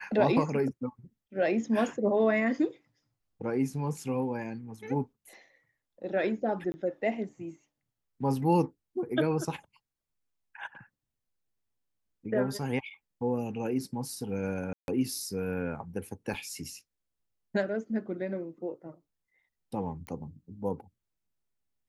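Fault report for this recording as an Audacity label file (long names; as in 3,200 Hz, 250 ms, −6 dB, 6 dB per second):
6.720000	6.740000	drop-out 20 ms
14.730000	14.880000	drop-out 151 ms
16.340000	16.340000	drop-out 4.2 ms
20.070000	20.070000	click −25 dBFS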